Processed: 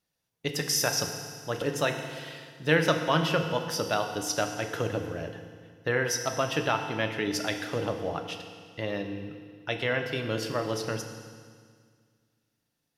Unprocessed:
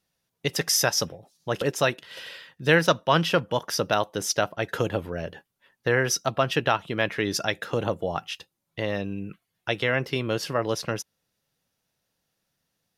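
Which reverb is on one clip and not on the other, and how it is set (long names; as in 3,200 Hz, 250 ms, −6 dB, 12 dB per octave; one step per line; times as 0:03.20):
feedback delay network reverb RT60 1.9 s, low-frequency decay 1.2×, high-frequency decay 1×, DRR 4.5 dB
level −5 dB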